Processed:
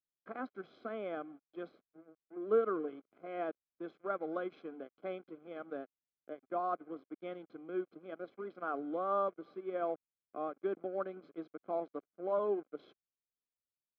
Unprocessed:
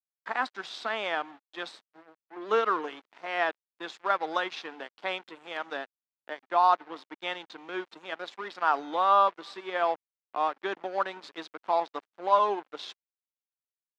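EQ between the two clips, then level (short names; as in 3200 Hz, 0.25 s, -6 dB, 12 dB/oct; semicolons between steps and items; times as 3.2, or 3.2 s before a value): running mean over 48 samples; air absorption 150 m; +2.0 dB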